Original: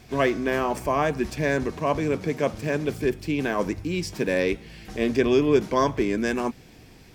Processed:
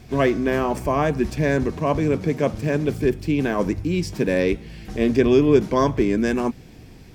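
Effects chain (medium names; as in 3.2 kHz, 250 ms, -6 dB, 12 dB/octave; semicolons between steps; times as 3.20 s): bass shelf 390 Hz +7.5 dB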